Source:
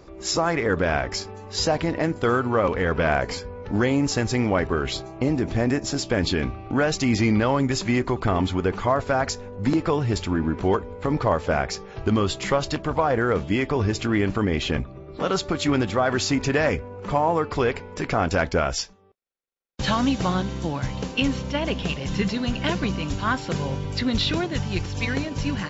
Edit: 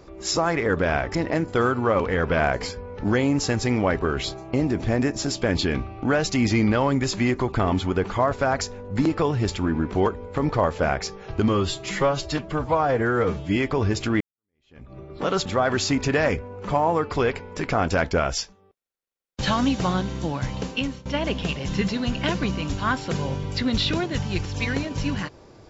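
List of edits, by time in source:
1.15–1.83 s: delete
12.16–13.55 s: stretch 1.5×
14.19–14.92 s: fade in exponential
15.44–15.86 s: delete
21.07–21.46 s: fade out, to -20 dB

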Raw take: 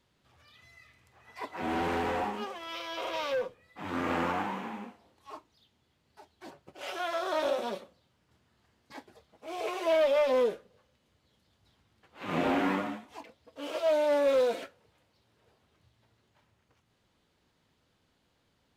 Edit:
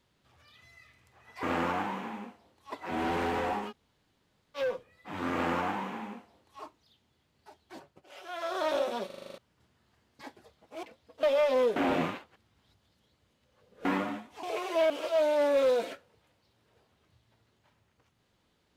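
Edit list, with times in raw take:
2.41–3.28 s: room tone, crossfade 0.06 s
4.03–5.32 s: copy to 1.43 s
6.48–7.27 s: dip -10.5 dB, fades 0.32 s
7.77 s: stutter in place 0.04 s, 8 plays
9.54–10.01 s: swap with 13.21–13.61 s
10.54–12.63 s: reverse

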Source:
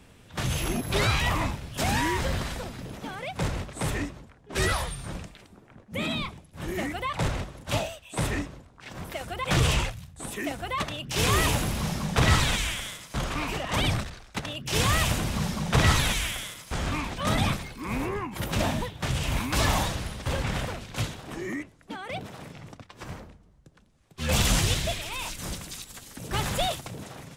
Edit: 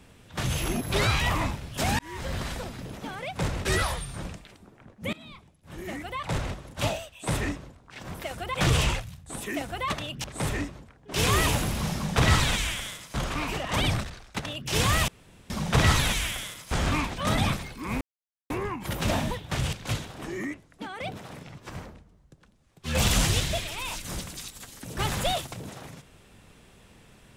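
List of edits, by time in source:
1.99–2.49 s: fade in
3.65–4.55 s: move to 11.14 s
6.03–7.58 s: fade in, from -22 dB
15.08–15.50 s: room tone
16.69–17.06 s: gain +3.5 dB
18.01 s: insert silence 0.49 s
19.24–20.82 s: delete
22.67–22.92 s: delete

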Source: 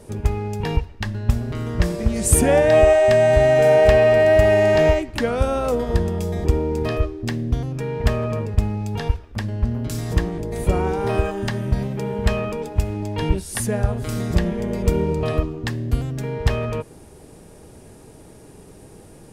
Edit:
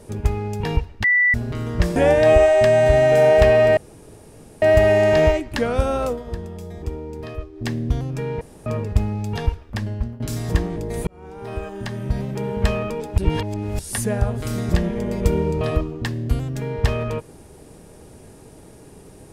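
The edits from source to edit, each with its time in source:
1.04–1.34 s: bleep 1.97 kHz -13 dBFS
1.96–2.43 s: delete
4.24 s: insert room tone 0.85 s
5.65–7.30 s: dip -10 dB, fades 0.16 s
8.03–8.28 s: room tone
9.50–9.82 s: fade out, to -16.5 dB
10.69–12.07 s: fade in
12.80–13.41 s: reverse

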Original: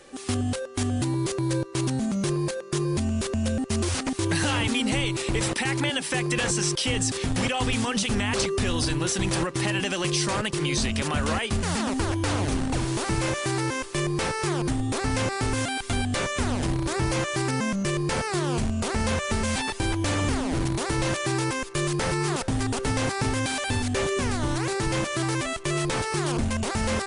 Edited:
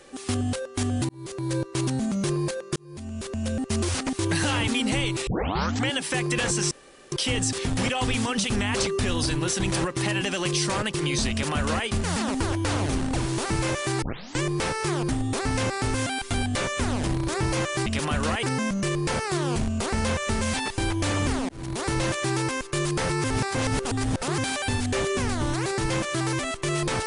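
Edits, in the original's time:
1.09–1.61 s: fade in
2.76–3.70 s: fade in
5.27 s: tape start 0.64 s
6.71 s: insert room tone 0.41 s
10.89–11.46 s: copy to 17.45 s
13.61 s: tape start 0.40 s
20.51–20.88 s: fade in
22.26–23.40 s: reverse

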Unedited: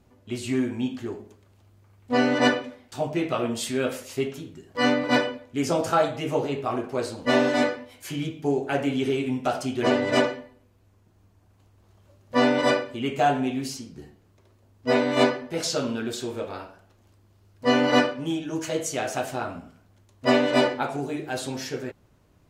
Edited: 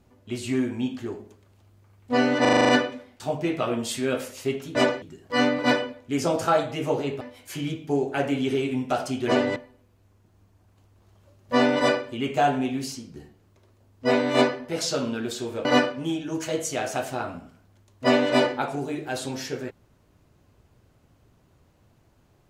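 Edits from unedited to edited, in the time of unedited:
2.41 s: stutter 0.04 s, 8 plays
6.66–7.76 s: delete
10.11–10.38 s: move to 4.47 s
16.47–17.86 s: delete

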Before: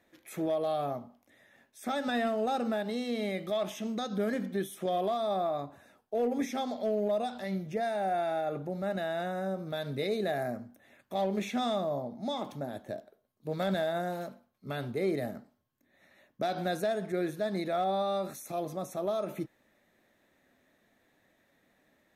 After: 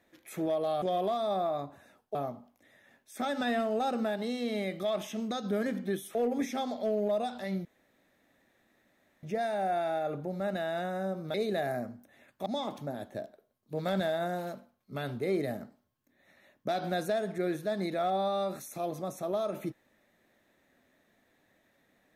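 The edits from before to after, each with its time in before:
4.82–6.15 s: move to 0.82 s
7.65 s: insert room tone 1.58 s
9.76–10.05 s: delete
11.17–12.20 s: delete

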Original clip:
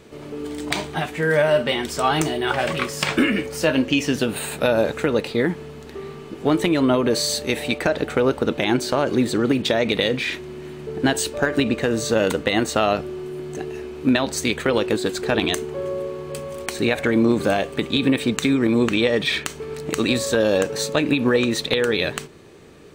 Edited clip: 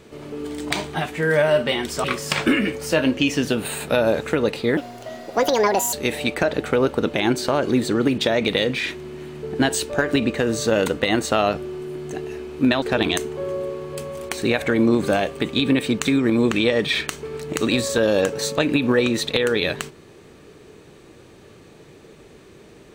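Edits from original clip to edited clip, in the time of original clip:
2.04–2.75 s: delete
5.48–7.37 s: speed 163%
14.26–15.19 s: delete

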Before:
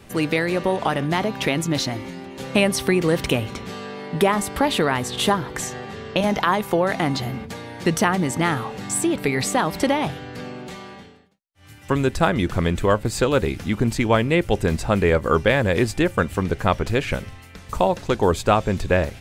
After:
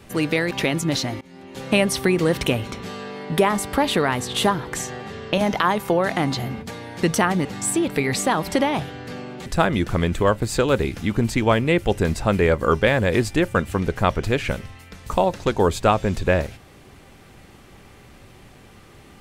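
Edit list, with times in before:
0.51–1.34 s: delete
2.04–2.66 s: fade in equal-power, from -23 dB
8.28–8.73 s: delete
10.74–12.09 s: delete

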